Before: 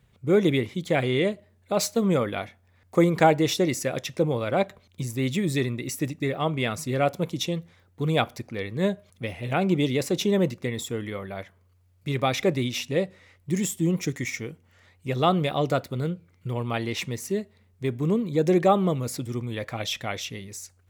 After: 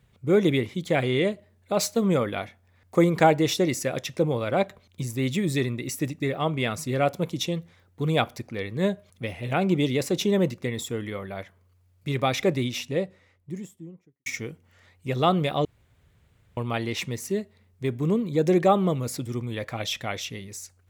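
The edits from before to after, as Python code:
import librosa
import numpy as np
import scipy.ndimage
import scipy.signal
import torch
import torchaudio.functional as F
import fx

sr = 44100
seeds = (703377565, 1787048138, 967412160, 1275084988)

y = fx.studio_fade_out(x, sr, start_s=12.51, length_s=1.75)
y = fx.edit(y, sr, fx.room_tone_fill(start_s=15.65, length_s=0.92), tone=tone)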